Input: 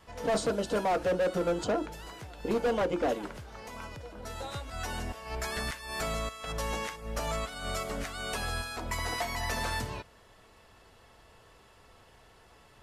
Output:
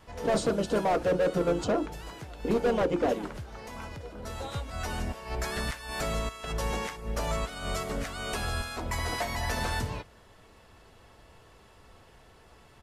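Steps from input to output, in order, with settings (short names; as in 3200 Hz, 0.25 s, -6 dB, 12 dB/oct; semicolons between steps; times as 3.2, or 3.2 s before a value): harmoniser -3 st -9 dB; low shelf 430 Hz +4 dB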